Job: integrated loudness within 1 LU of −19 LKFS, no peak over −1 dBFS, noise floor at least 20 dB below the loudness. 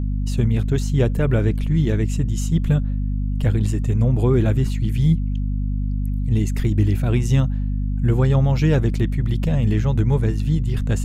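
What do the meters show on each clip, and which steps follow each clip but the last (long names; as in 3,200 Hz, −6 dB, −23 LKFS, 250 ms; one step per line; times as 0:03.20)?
mains hum 50 Hz; hum harmonics up to 250 Hz; level of the hum −19 dBFS; integrated loudness −20.5 LKFS; sample peak −5.0 dBFS; target loudness −19.0 LKFS
→ hum removal 50 Hz, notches 5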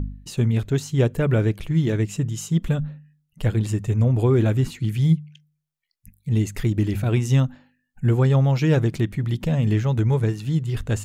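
mains hum none found; integrated loudness −22.0 LKFS; sample peak −7.0 dBFS; target loudness −19.0 LKFS
→ level +3 dB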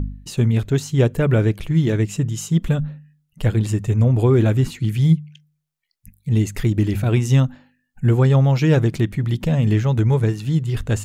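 integrated loudness −19.0 LKFS; sample peak −4.0 dBFS; background noise floor −72 dBFS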